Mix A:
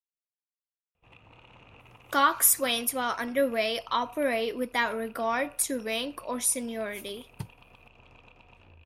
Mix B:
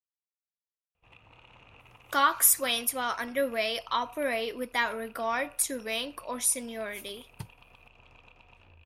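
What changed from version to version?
master: add peaking EQ 240 Hz -5 dB 2.8 oct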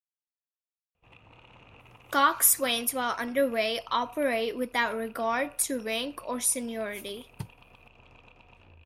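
master: add peaking EQ 240 Hz +5 dB 2.8 oct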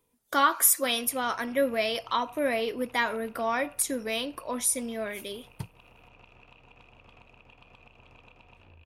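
speech: entry -1.80 s

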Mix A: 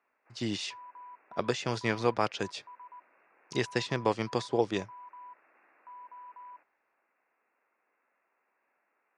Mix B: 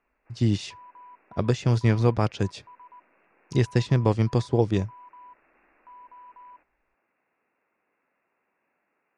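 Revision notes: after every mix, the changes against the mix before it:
background: remove low-pass 2.2 kHz; master: remove frequency weighting A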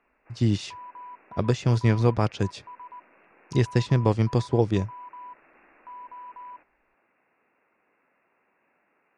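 background +6.0 dB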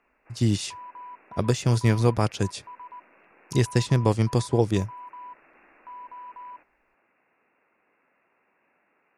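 master: remove distance through air 110 m

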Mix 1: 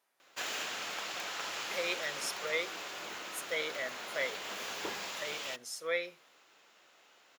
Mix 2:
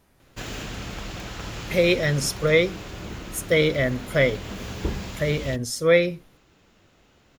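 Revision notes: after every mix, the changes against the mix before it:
speech +11.5 dB; master: remove high-pass 690 Hz 12 dB/octave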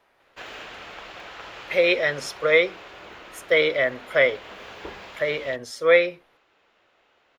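speech +4.0 dB; master: add three-band isolator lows -22 dB, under 430 Hz, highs -17 dB, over 3.8 kHz

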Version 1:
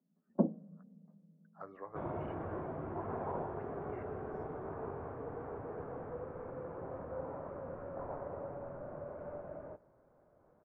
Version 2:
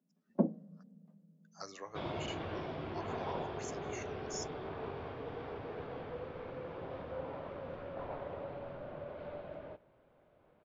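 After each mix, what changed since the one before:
master: remove low-pass 1.5 kHz 24 dB/octave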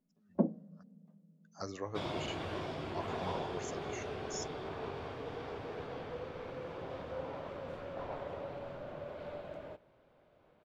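speech: remove high-pass 970 Hz 6 dB/octave; second sound: remove distance through air 220 m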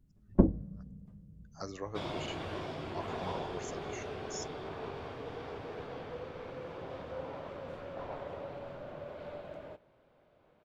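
first sound: remove rippled Chebyshev high-pass 160 Hz, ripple 9 dB

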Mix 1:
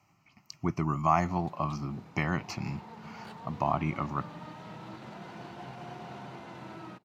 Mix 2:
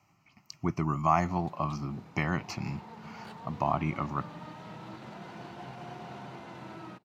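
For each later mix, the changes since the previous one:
no change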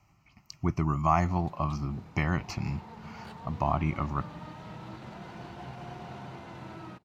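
master: remove high-pass 140 Hz 12 dB/octave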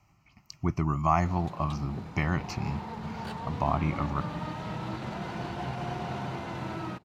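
background +8.0 dB

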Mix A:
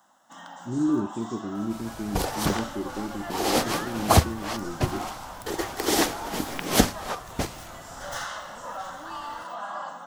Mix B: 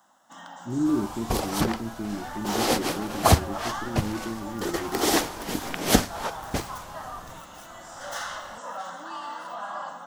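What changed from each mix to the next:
second sound: entry -0.85 s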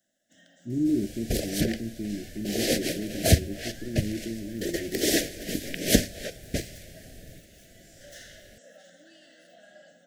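first sound -9.5 dB; master: add elliptic band-stop 630–1700 Hz, stop band 60 dB

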